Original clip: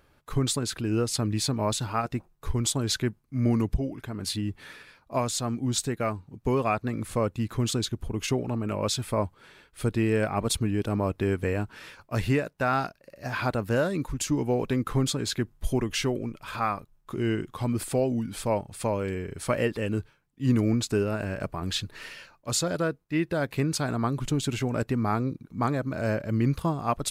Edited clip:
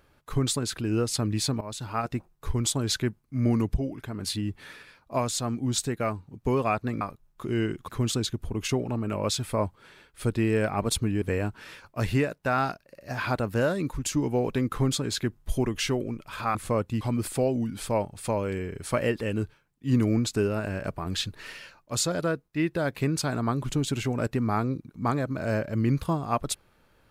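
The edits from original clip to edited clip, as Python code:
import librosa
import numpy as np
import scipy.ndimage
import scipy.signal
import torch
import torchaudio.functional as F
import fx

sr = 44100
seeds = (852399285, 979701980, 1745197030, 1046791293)

y = fx.edit(x, sr, fx.fade_in_from(start_s=1.61, length_s=0.45, floor_db=-17.0),
    fx.swap(start_s=7.01, length_s=0.46, other_s=16.7, other_length_s=0.87),
    fx.cut(start_s=10.81, length_s=0.56), tone=tone)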